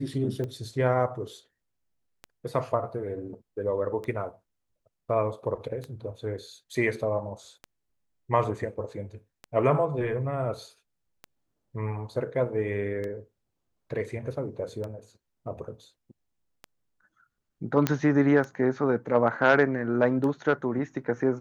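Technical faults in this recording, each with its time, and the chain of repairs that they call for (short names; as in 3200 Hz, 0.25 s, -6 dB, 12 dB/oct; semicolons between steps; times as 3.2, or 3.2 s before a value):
tick 33 1/3 rpm -23 dBFS
17.87 pop -9 dBFS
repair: de-click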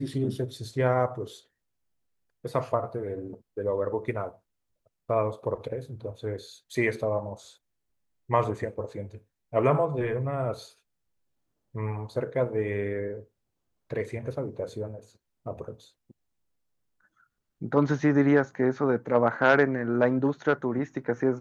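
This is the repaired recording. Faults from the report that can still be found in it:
none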